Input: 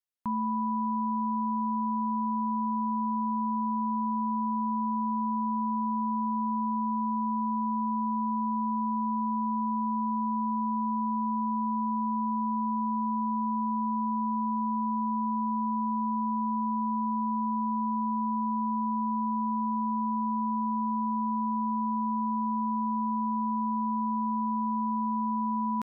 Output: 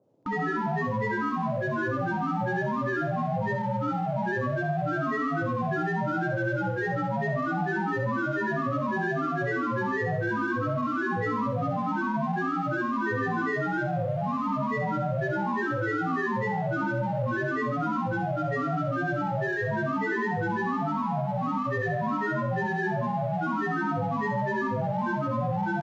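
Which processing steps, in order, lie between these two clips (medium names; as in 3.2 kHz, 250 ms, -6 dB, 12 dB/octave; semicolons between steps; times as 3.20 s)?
granulator, grains 20 per s, pitch spread up and down by 12 st; in parallel at -6.5 dB: hard clipper -39 dBFS, distortion -6 dB; on the sum: band noise 110–630 Hz -67 dBFS; on a send: flutter echo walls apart 11.1 m, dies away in 0.56 s; on the sum: resampled via 16 kHz; bit-crushed delay 83 ms, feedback 35%, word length 10-bit, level -13.5 dB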